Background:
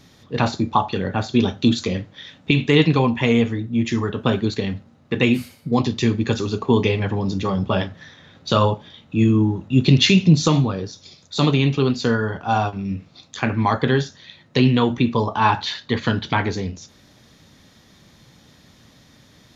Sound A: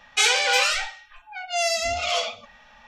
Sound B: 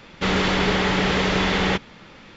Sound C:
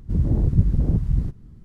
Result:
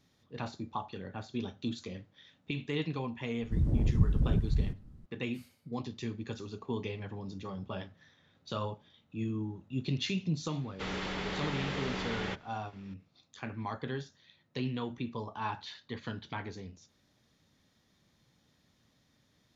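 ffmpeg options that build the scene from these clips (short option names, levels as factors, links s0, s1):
-filter_complex "[0:a]volume=0.112[s0];[3:a]atrim=end=1.64,asetpts=PTS-STARTPTS,volume=0.398,afade=t=in:d=0.004:c=hsin,afade=t=out:st=1.636:d=0.004:c=hsin,adelay=3420[s1];[2:a]atrim=end=2.36,asetpts=PTS-STARTPTS,volume=0.158,afade=t=in:d=0.004:c=hsin,afade=t=out:st=2.356:d=0.004:c=hsin,adelay=466578S[s2];[s0][s1][s2]amix=inputs=3:normalize=0"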